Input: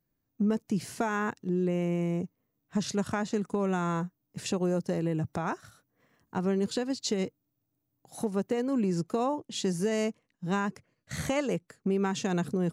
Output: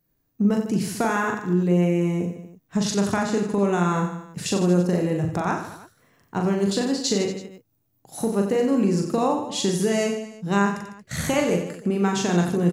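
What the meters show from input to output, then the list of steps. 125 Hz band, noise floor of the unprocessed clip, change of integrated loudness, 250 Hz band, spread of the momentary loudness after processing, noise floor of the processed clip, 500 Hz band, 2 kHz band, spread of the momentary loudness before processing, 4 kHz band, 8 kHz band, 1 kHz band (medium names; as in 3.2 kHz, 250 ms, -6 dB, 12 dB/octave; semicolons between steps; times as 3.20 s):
+8.0 dB, -81 dBFS, +7.5 dB, +8.0 dB, 9 LU, -70 dBFS, +7.5 dB, +8.0 dB, 7 LU, +8.5 dB, +9.5 dB, +8.0 dB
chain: treble shelf 9.7 kHz +5 dB; on a send: reverse bouncing-ball echo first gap 40 ms, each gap 1.25×, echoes 5; on the sum: trim +5.5 dB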